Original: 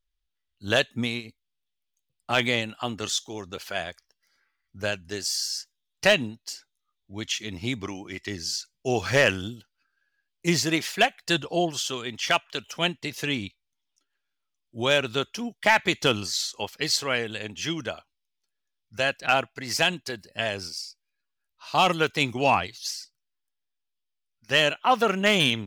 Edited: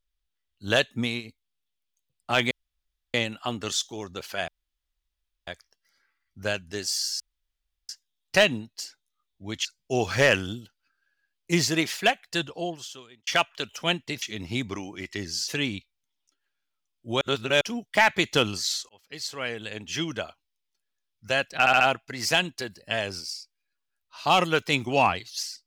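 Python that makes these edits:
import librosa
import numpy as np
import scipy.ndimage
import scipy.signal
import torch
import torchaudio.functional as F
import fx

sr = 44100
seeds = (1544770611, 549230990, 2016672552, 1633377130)

y = fx.edit(x, sr, fx.insert_room_tone(at_s=2.51, length_s=0.63),
    fx.insert_room_tone(at_s=3.85, length_s=0.99),
    fx.insert_room_tone(at_s=5.58, length_s=0.69),
    fx.move(start_s=7.34, length_s=1.26, to_s=13.17),
    fx.fade_out_span(start_s=10.87, length_s=1.35),
    fx.reverse_span(start_s=14.9, length_s=0.4),
    fx.fade_in_span(start_s=16.58, length_s=1.06),
    fx.stutter(start_s=19.28, slice_s=0.07, count=4), tone=tone)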